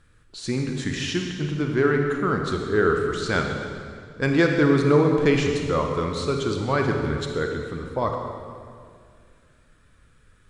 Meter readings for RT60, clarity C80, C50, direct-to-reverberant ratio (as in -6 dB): 2.1 s, 4.5 dB, 3.5 dB, 2.5 dB